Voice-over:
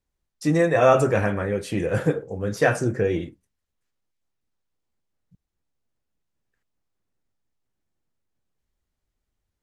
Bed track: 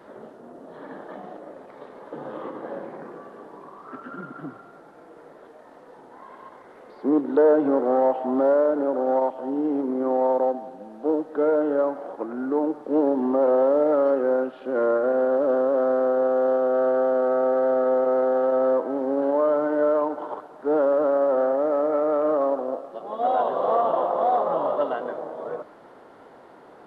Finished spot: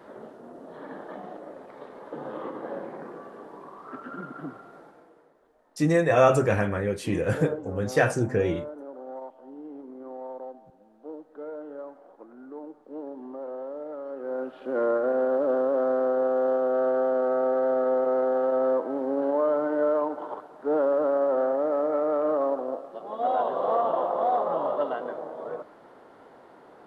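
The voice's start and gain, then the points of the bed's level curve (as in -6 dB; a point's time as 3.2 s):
5.35 s, -2.0 dB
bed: 4.83 s -1 dB
5.39 s -17 dB
14.07 s -17 dB
14.57 s -3 dB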